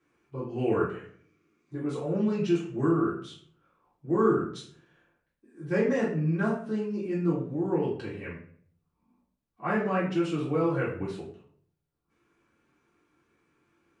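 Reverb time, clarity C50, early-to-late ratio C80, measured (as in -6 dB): 0.60 s, 4.5 dB, 9.5 dB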